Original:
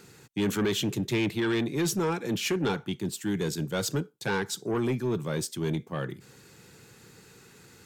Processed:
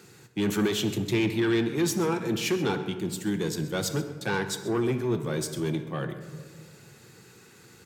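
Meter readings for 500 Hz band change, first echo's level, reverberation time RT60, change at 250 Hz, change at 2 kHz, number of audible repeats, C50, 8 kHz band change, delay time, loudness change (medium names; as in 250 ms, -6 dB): +1.5 dB, -17.0 dB, 1.8 s, +2.0 dB, +1.0 dB, 1, 9.5 dB, +0.5 dB, 131 ms, +1.5 dB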